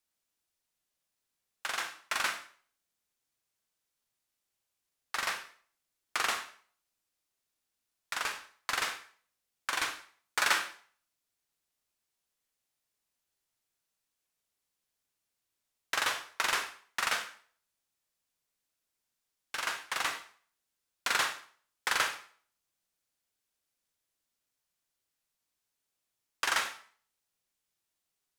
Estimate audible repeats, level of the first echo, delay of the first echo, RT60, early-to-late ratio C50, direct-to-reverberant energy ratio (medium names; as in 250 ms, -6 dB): no echo, no echo, no echo, 0.50 s, 10.0 dB, 7.0 dB